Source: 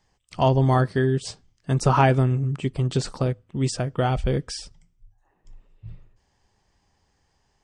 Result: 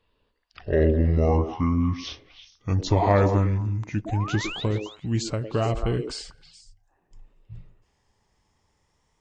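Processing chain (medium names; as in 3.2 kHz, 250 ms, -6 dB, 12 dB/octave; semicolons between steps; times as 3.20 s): gliding tape speed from 55% -> 111%; painted sound rise, 4.06–4.64 s, 620–4000 Hz -33 dBFS; repeats whose band climbs or falls 106 ms, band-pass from 390 Hz, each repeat 1.4 oct, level -4 dB; trim -2 dB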